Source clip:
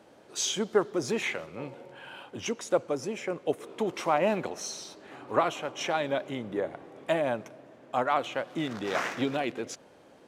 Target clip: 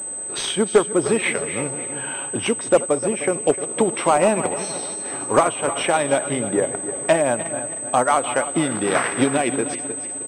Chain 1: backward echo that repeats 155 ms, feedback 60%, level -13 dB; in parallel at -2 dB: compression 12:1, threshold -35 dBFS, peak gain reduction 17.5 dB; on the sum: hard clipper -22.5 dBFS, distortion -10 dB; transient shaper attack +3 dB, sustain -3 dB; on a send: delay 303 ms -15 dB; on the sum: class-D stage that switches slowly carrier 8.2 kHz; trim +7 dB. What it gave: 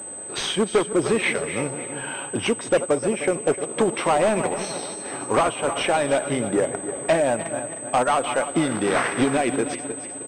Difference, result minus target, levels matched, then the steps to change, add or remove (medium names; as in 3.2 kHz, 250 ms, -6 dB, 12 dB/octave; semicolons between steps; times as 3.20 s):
hard clipper: distortion +11 dB
change: hard clipper -16 dBFS, distortion -21 dB